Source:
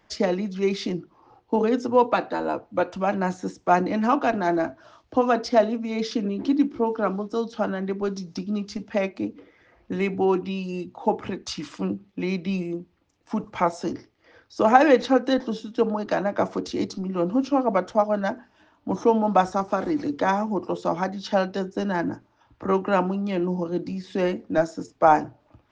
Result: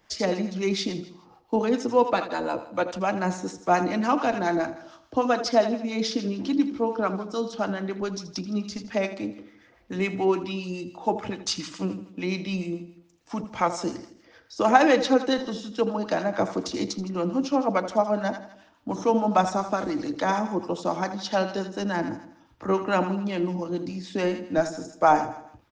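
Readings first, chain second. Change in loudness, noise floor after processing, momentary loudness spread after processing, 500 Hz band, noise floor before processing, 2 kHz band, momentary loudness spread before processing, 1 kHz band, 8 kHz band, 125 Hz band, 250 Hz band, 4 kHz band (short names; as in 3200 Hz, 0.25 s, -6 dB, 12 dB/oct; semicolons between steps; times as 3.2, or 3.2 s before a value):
-1.5 dB, -58 dBFS, 11 LU, -2.0 dB, -64 dBFS, -0.5 dB, 11 LU, -1.5 dB, n/a, -2.0 dB, -2.0 dB, +3.5 dB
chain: high shelf 3700 Hz +9.5 dB; feedback echo 81 ms, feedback 49%, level -12 dB; harmonic tremolo 7 Hz, depth 50%, crossover 740 Hz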